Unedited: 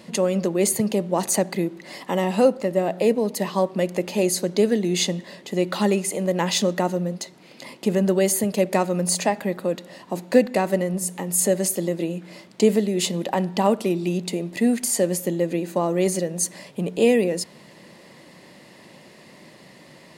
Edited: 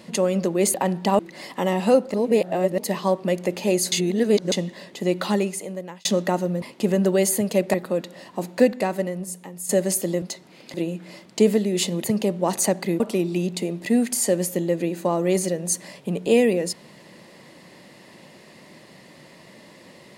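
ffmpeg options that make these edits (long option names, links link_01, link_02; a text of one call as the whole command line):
ffmpeg -i in.wav -filter_complex "[0:a]asplit=15[link_01][link_02][link_03][link_04][link_05][link_06][link_07][link_08][link_09][link_10][link_11][link_12][link_13][link_14][link_15];[link_01]atrim=end=0.742[link_16];[link_02]atrim=start=13.258:end=13.712[link_17];[link_03]atrim=start=1.698:end=2.652[link_18];[link_04]atrim=start=2.648:end=3.292,asetpts=PTS-STARTPTS,areverse[link_19];[link_05]atrim=start=3.288:end=4.432[link_20];[link_06]atrim=start=4.428:end=5.032,asetpts=PTS-STARTPTS,areverse[link_21];[link_07]atrim=start=5.028:end=6.56,asetpts=PTS-STARTPTS,afade=type=out:start_time=0.702:duration=0.83[link_22];[link_08]atrim=start=6.56:end=7.132,asetpts=PTS-STARTPTS,afade=type=in:duration=0.004:curve=hsin[link_23];[link_09]atrim=start=7.648:end=8.772[link_24];[link_10]atrim=start=9.478:end=11.43,asetpts=PTS-STARTPTS,afade=type=out:start_time=0.752:duration=1.2:silence=0.211349[link_25];[link_11]atrim=start=11.43:end=11.962,asetpts=PTS-STARTPTS,afade=type=in:duration=0.004:curve=hsin:silence=0.211349[link_26];[link_12]atrim=start=7.128:end=7.652[link_27];[link_13]atrim=start=11.958:end=13.262[link_28];[link_14]atrim=start=0.738:end=1.702[link_29];[link_15]atrim=start=13.708[link_30];[link_16][link_17]acrossfade=duration=0.004:curve1=hsin:curve2=hsin[link_31];[link_31][link_18]acrossfade=duration=0.004:curve1=hsin:curve2=hsin[link_32];[link_32][link_19]acrossfade=duration=0.004:curve1=hsin:curve2=hsin[link_33];[link_33][link_20]acrossfade=duration=0.004:curve1=hsin:curve2=hsin[link_34];[link_34][link_21]acrossfade=duration=0.004:curve1=hsin:curve2=hsin[link_35];[link_22][link_23]concat=n=2:v=0:a=1[link_36];[link_35][link_36]acrossfade=duration=0.004:curve1=hsin:curve2=hsin[link_37];[link_37][link_24]acrossfade=duration=0.004:curve1=hsin:curve2=hsin[link_38];[link_25][link_26]concat=n=2:v=0:a=1[link_39];[link_38][link_39]acrossfade=duration=0.004:curve1=hsin:curve2=hsin[link_40];[link_40][link_27]acrossfade=duration=0.004:curve1=hsin:curve2=hsin[link_41];[link_41][link_28]acrossfade=duration=0.004:curve1=hsin:curve2=hsin[link_42];[link_42][link_29]acrossfade=duration=0.004:curve1=hsin:curve2=hsin[link_43];[link_43][link_30]acrossfade=duration=0.004:curve1=hsin:curve2=hsin" out.wav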